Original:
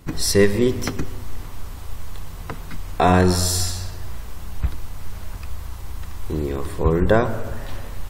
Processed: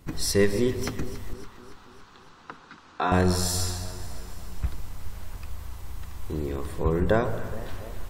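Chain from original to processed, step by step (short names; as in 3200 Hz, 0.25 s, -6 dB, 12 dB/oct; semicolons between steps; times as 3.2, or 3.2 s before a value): 1.33–3.12 speaker cabinet 310–5400 Hz, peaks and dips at 440 Hz -5 dB, 630 Hz -10 dB, 1400 Hz +5 dB, 2100 Hz -7 dB, 3100 Hz -3 dB, 5100 Hz -4 dB; echo with dull and thin repeats by turns 0.141 s, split 910 Hz, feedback 75%, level -13 dB; gain -6 dB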